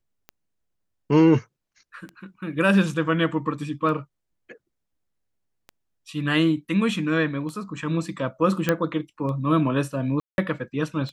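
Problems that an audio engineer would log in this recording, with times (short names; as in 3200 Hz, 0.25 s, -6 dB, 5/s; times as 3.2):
tick 33 1/3 rpm -24 dBFS
8.69 pop -7 dBFS
10.2–10.38 gap 0.181 s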